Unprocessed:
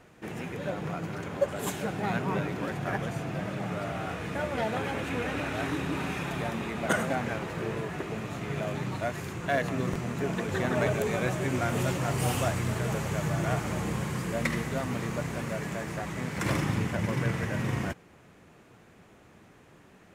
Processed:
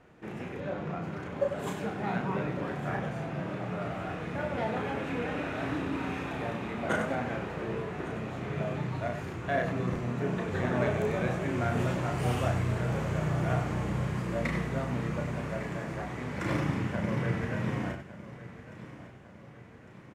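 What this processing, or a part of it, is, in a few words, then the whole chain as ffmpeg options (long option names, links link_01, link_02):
slapback doubling: -filter_complex "[0:a]asplit=3[link_01][link_02][link_03];[link_02]adelay=33,volume=-4dB[link_04];[link_03]adelay=96,volume=-8.5dB[link_05];[link_01][link_04][link_05]amix=inputs=3:normalize=0,lowpass=frequency=2500:poles=1,asettb=1/sr,asplit=3[link_06][link_07][link_08];[link_06]atrim=end=0.604[link_09];[link_07]atrim=start=0.6:end=1.02,asetpts=PTS-STARTPTS,afade=type=in:duration=0.004:curve=qsin,afade=type=out:start_time=0.416:duration=0.004:curve=qsin,equalizer=frequency=13000:width=0.98:gain=-13.5[link_10];[link_08]atrim=start=1.016[link_11];[link_09][link_10]acrossfade=duration=0.004:curve1=hsin:curve2=qsin[link_12];[link_12][link_11]acrossfade=duration=0.004:curve1=qsin:curve2=hsin,aecho=1:1:1154|2308|3462|4616|5770:0.168|0.0856|0.0437|0.0223|0.0114,volume=-3dB"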